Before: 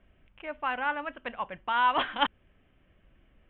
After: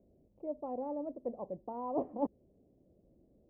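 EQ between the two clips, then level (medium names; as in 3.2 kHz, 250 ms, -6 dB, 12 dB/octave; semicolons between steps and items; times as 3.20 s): high-pass 350 Hz 6 dB/octave; inverse Chebyshev low-pass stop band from 1.4 kHz, stop band 50 dB; +7.0 dB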